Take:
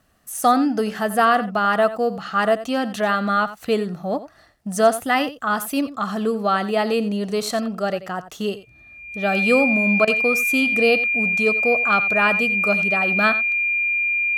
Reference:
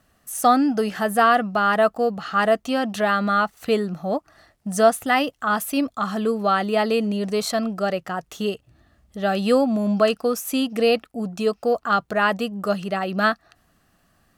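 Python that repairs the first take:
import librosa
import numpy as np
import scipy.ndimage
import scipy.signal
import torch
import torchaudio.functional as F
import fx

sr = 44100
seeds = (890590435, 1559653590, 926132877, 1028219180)

y = fx.notch(x, sr, hz=2400.0, q=30.0)
y = fx.fix_interpolate(y, sr, at_s=(10.05,), length_ms=23.0)
y = fx.fix_echo_inverse(y, sr, delay_ms=88, level_db=-14.5)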